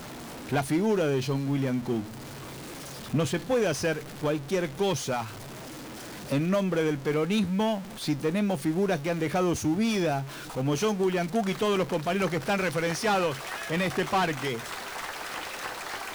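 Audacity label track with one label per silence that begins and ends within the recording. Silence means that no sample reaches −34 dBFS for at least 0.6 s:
2.030000	3.130000	silence
5.270000	6.300000	silence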